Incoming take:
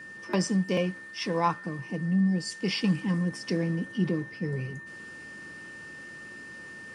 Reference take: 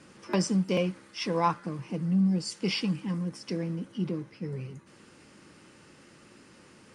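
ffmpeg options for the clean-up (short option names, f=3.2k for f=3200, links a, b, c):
-af "bandreject=f=1.8k:w=30,asetnsamples=n=441:p=0,asendcmd='2.84 volume volume -4dB',volume=0dB"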